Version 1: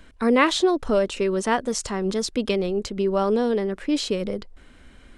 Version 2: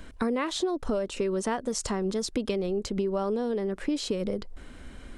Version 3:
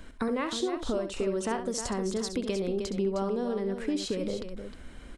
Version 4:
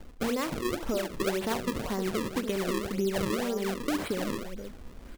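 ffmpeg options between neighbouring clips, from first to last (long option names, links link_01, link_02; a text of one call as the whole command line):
ffmpeg -i in.wav -af "equalizer=frequency=2500:width=0.64:gain=-4,acompressor=threshold=-31dB:ratio=6,volume=5dB" out.wav
ffmpeg -i in.wav -af "aecho=1:1:67|310:0.335|0.355,volume=-2.5dB" out.wav
ffmpeg -i in.wav -af "acrusher=samples=34:mix=1:aa=0.000001:lfo=1:lforange=54.4:lforate=1.9" out.wav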